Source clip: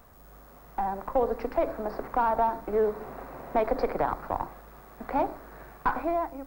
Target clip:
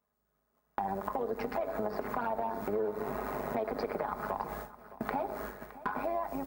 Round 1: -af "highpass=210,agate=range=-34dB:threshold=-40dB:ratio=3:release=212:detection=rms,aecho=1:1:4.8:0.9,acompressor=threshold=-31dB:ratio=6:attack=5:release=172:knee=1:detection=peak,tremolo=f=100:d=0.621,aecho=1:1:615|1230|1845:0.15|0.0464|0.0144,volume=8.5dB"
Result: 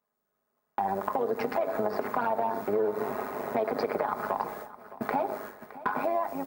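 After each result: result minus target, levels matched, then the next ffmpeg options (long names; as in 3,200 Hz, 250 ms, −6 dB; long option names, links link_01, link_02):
downward compressor: peak gain reduction −5.5 dB; 125 Hz band −4.5 dB
-af "highpass=210,agate=range=-34dB:threshold=-40dB:ratio=3:release=212:detection=rms,aecho=1:1:4.8:0.9,acompressor=threshold=-37.5dB:ratio=6:attack=5:release=172:knee=1:detection=peak,tremolo=f=100:d=0.621,aecho=1:1:615|1230|1845:0.15|0.0464|0.0144,volume=8.5dB"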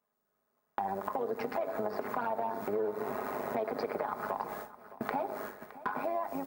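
125 Hz band −4.0 dB
-af "highpass=72,agate=range=-34dB:threshold=-40dB:ratio=3:release=212:detection=rms,aecho=1:1:4.8:0.9,acompressor=threshold=-37.5dB:ratio=6:attack=5:release=172:knee=1:detection=peak,tremolo=f=100:d=0.621,aecho=1:1:615|1230|1845:0.15|0.0464|0.0144,volume=8.5dB"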